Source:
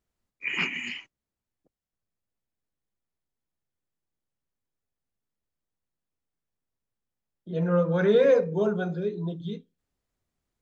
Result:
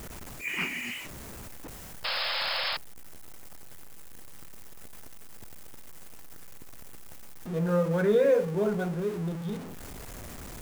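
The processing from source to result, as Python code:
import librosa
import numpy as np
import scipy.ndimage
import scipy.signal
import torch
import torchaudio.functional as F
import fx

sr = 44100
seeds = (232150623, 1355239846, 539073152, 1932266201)

y = x + 0.5 * 10.0 ** (-31.0 / 20.0) * np.sign(x)
y = fx.peak_eq(y, sr, hz=4000.0, db=-5.0, octaves=1.3)
y = fx.spec_paint(y, sr, seeds[0], shape='noise', start_s=2.04, length_s=0.73, low_hz=490.0, high_hz=5300.0, level_db=-27.0)
y = y * 10.0 ** (-3.5 / 20.0)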